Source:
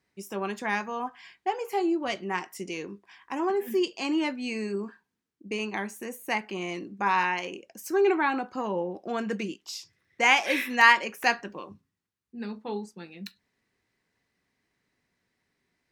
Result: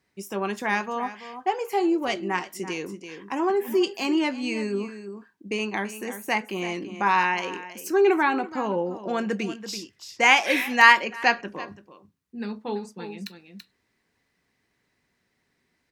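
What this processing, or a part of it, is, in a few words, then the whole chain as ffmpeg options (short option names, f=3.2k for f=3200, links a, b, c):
ducked delay: -filter_complex "[0:a]asplit=3[a][b][c];[b]adelay=334,volume=-7dB[d];[c]apad=whole_len=716779[e];[d][e]sidechaincompress=threshold=-33dB:ratio=4:attack=6.4:release=972[f];[a][f]amix=inputs=2:normalize=0,asettb=1/sr,asplit=3[g][h][i];[g]atrim=end=11.004[j];[h]atrim=start=11:end=11.68,asetpts=PTS-STARTPTS,afade=t=in:d=0.004:c=qsin,afade=t=out:st=0.676:d=0.004:c=qsin,lowpass=5k[k];[i]atrim=start=11.676[l];[j][k]acrossfade=d=0.004:c1=hsin:c2=qsin[m];[m][l]acrossfade=d=0.004:c1=qsin:c2=hsin,volume=3.5dB"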